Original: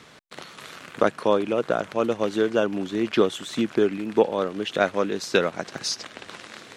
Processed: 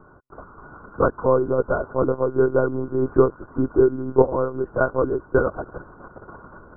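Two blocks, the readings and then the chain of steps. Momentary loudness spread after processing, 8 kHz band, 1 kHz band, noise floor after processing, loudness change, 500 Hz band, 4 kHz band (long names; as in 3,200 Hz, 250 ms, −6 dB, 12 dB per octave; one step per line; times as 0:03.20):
6 LU, below −40 dB, +1.5 dB, −49 dBFS, +3.0 dB, +3.5 dB, below −40 dB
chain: one-pitch LPC vocoder at 8 kHz 130 Hz
Chebyshev low-pass with heavy ripple 1,500 Hz, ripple 6 dB
level +5.5 dB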